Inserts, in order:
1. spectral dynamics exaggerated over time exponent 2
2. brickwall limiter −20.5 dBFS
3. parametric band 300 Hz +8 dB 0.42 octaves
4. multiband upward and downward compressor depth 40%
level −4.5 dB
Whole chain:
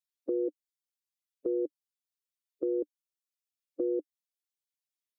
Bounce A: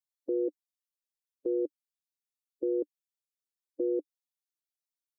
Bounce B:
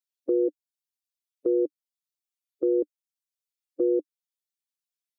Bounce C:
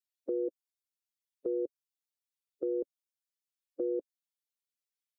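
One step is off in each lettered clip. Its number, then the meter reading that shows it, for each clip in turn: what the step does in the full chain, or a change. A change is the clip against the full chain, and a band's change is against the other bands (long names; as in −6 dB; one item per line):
4, change in crest factor −1.5 dB
2, average gain reduction 6.5 dB
3, change in integrated loudness −2.5 LU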